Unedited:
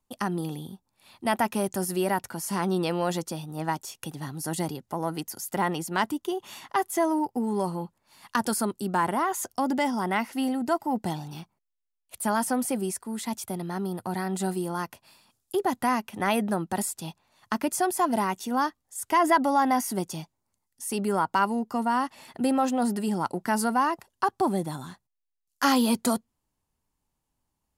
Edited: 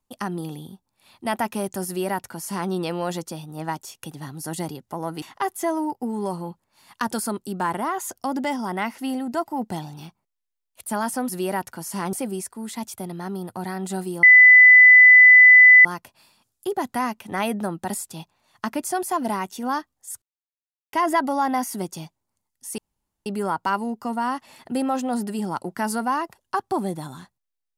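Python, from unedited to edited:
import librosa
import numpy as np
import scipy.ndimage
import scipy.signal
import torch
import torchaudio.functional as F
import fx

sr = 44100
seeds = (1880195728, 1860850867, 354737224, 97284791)

y = fx.edit(x, sr, fx.duplicate(start_s=1.86, length_s=0.84, to_s=12.63),
    fx.cut(start_s=5.22, length_s=1.34),
    fx.insert_tone(at_s=14.73, length_s=1.62, hz=2000.0, db=-6.5),
    fx.insert_silence(at_s=19.1, length_s=0.71),
    fx.insert_room_tone(at_s=20.95, length_s=0.48), tone=tone)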